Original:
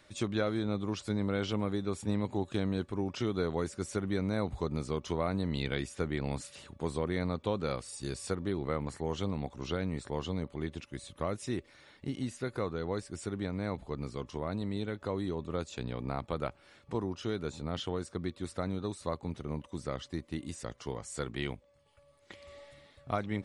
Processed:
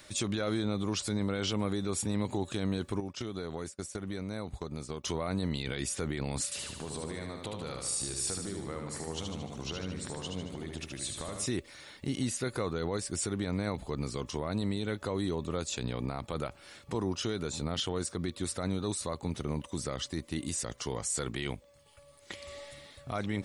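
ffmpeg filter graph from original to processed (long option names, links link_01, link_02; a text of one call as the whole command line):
ffmpeg -i in.wav -filter_complex "[0:a]asettb=1/sr,asplit=3[link_01][link_02][link_03];[link_01]atrim=end=3.004[link_04];[link_02]atrim=start=3:end=5.04,asetpts=PTS-STARTPTS,afade=type=in:duration=0.004:curve=qsin,afade=type=out:start_time=2.036:duration=0.004:curve=qsin,agate=range=-33dB:threshold=-35dB:ratio=3:release=100:detection=peak,acompressor=threshold=-38dB:ratio=10:attack=3.2:release=140:knee=1:detection=peak[link_05];[link_03]atrim=start=5.036[link_06];[link_04][link_05]acrossfade=duration=0.004:curve1=hsin:curve2=qsin[link_07];[link_07][link_06]acrossfade=duration=0.004:curve1=qsin:curve2=hsin,asettb=1/sr,asplit=3[link_08][link_09][link_10];[link_08]atrim=end=6.444[link_11];[link_09]atrim=start=6.44:end=11.46,asetpts=PTS-STARTPTS,afade=type=in:duration=0.004:curve=qsin,afade=type=out:start_time=5.016:duration=0.004:curve=qsin,acompressor=threshold=-43dB:ratio=4:attack=3.2:release=140:knee=1:detection=peak,aecho=1:1:75|150|225|300|375|450|525|600:0.596|0.345|0.2|0.116|0.0674|0.0391|0.0227|0.0132,atrim=end_sample=221382[link_12];[link_10]atrim=start=11.456[link_13];[link_11][link_12]acrossfade=duration=0.004:curve1=hsin:curve2=qsin[link_14];[link_14][link_13]acrossfade=duration=0.004:curve1=qsin:curve2=hsin,highshelf=frequency=4400:gain=11.5,alimiter=level_in=3.5dB:limit=-24dB:level=0:latency=1:release=45,volume=-3.5dB,volume=5dB" out.wav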